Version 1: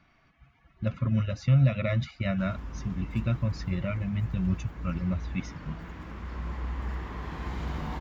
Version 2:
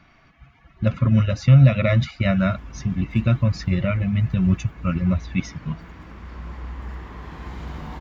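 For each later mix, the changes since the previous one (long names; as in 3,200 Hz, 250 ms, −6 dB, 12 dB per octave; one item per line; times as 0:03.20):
speech +9.0 dB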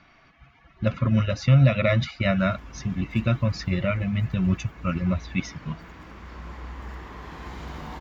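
speech: add low-pass filter 6,000 Hz
master: add bass and treble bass −5 dB, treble +3 dB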